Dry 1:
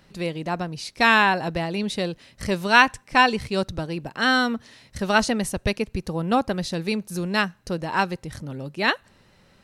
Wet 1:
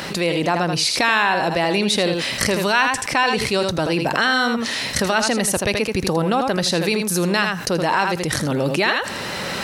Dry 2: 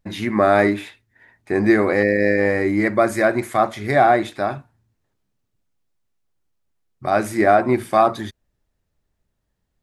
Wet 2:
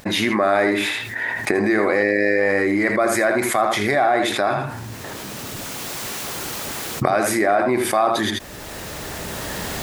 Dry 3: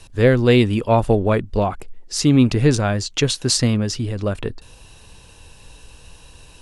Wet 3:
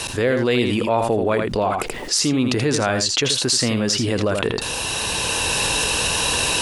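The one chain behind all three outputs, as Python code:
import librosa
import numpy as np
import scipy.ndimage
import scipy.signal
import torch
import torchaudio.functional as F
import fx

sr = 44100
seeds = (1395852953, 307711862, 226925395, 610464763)

p1 = fx.recorder_agc(x, sr, target_db=-10.5, rise_db_per_s=19.0, max_gain_db=30)
p2 = fx.highpass(p1, sr, hz=140.0, slope=6)
p3 = fx.low_shelf(p2, sr, hz=250.0, db=-8.5)
p4 = p3 + fx.echo_single(p3, sr, ms=81, db=-10.0, dry=0)
p5 = fx.env_flatten(p4, sr, amount_pct=70)
y = F.gain(torch.from_numpy(p5), -3.5).numpy()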